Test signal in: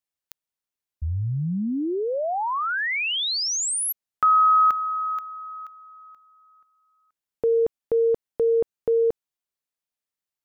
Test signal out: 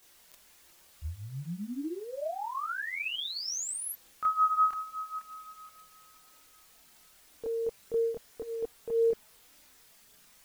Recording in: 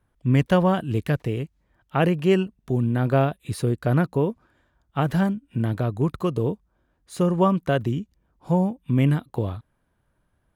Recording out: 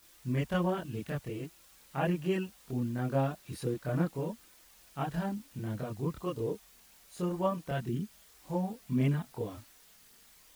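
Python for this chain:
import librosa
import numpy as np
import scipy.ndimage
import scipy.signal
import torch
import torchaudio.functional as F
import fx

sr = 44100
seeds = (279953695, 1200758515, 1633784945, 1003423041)

y = fx.quant_dither(x, sr, seeds[0], bits=8, dither='triangular')
y = fx.chorus_voices(y, sr, voices=6, hz=0.23, base_ms=26, depth_ms=3.4, mix_pct=60)
y = y * librosa.db_to_amplitude(-8.0)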